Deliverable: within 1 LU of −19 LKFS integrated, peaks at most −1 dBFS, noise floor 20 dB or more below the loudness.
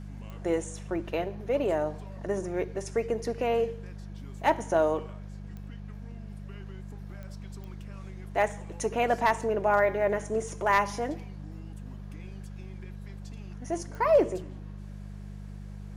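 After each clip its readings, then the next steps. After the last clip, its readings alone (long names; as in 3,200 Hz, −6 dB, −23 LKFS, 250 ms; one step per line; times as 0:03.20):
number of clicks 5; mains hum 50 Hz; hum harmonics up to 200 Hz; level of the hum −38 dBFS; integrated loudness −28.5 LKFS; sample peak −12.0 dBFS; target loudness −19.0 LKFS
→ click removal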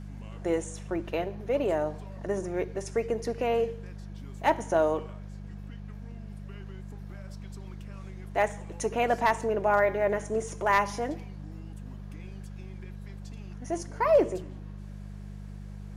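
number of clicks 0; mains hum 50 Hz; hum harmonics up to 200 Hz; level of the hum −38 dBFS
→ hum removal 50 Hz, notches 4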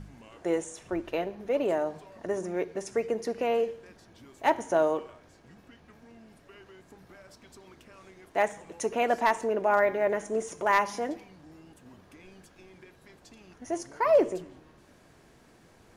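mains hum none found; integrated loudness −28.5 LKFS; sample peak −13.0 dBFS; target loudness −19.0 LKFS
→ level +9.5 dB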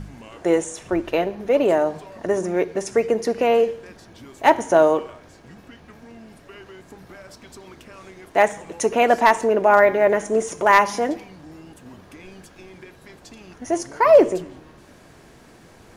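integrated loudness −19.0 LKFS; sample peak −3.5 dBFS; background noise floor −49 dBFS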